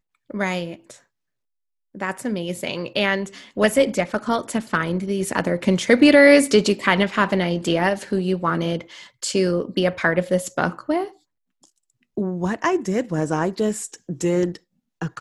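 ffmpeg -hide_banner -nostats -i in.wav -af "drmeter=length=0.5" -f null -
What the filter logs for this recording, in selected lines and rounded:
Channel 1: DR: 11.9
Overall DR: 11.9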